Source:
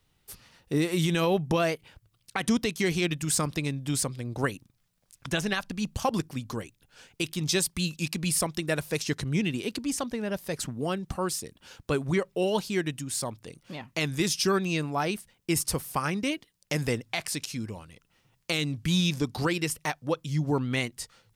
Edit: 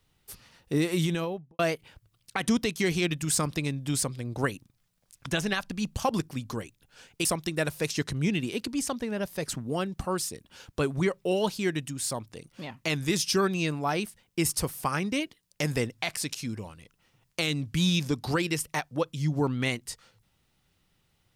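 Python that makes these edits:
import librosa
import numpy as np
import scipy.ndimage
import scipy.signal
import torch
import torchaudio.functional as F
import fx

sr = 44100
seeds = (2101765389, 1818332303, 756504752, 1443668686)

y = fx.studio_fade_out(x, sr, start_s=0.92, length_s=0.67)
y = fx.edit(y, sr, fx.cut(start_s=7.25, length_s=1.11), tone=tone)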